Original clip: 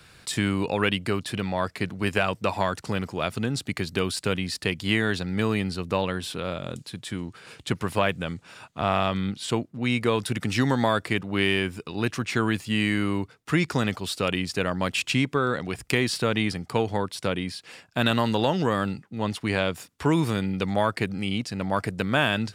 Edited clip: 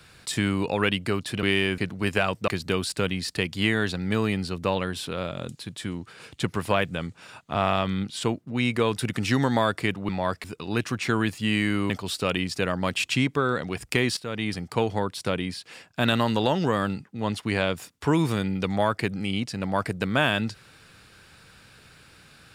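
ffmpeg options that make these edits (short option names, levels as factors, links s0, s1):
-filter_complex "[0:a]asplit=8[s0][s1][s2][s3][s4][s5][s6][s7];[s0]atrim=end=1.432[s8];[s1]atrim=start=11.358:end=11.712[s9];[s2]atrim=start=1.778:end=2.482[s10];[s3]atrim=start=3.748:end=11.362[s11];[s4]atrim=start=1.428:end=1.782[s12];[s5]atrim=start=11.708:end=13.172[s13];[s6]atrim=start=13.878:end=16.15,asetpts=PTS-STARTPTS,afade=t=out:st=2.268:d=0.004:c=hsin:silence=0.16788[s14];[s7]atrim=start=16.15,asetpts=PTS-STARTPTS,afade=t=in:d=0.47:silence=0.16788[s15];[s8][s9]acrossfade=d=0.004:c1=hsin:c2=hsin[s16];[s16][s10]acrossfade=d=0.004:c1=hsin:c2=hsin[s17];[s17][s11]acrossfade=d=0.004:c1=hsin:c2=hsin[s18];[s18][s12]acrossfade=d=0.004:c1=hsin:c2=hsin[s19];[s19][s13]acrossfade=d=0.004:c1=hsin:c2=hsin[s20];[s14][s15]concat=n=2:v=0:a=1[s21];[s20][s21]acrossfade=d=0.004:c1=hsin:c2=hsin"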